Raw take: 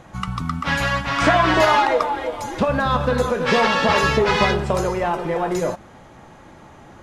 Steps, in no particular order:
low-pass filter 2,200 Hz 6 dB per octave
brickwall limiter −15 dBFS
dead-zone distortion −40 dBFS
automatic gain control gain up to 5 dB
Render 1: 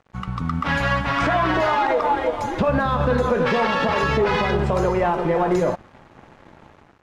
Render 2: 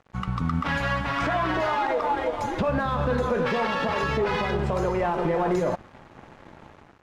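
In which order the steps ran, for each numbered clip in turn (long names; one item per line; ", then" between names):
brickwall limiter, then automatic gain control, then dead-zone distortion, then low-pass filter
automatic gain control, then brickwall limiter, then dead-zone distortion, then low-pass filter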